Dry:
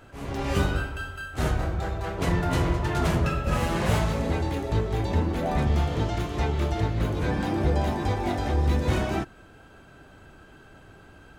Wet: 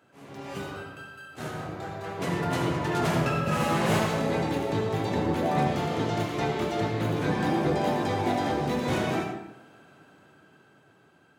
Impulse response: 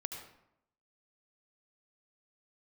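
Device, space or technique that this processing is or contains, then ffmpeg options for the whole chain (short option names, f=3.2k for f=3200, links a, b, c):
far laptop microphone: -filter_complex "[1:a]atrim=start_sample=2205[a];[0:a][a]afir=irnorm=-1:irlink=0,highpass=f=130:w=0.5412,highpass=f=130:w=1.3066,dynaudnorm=f=400:g=11:m=11dB,volume=-8dB"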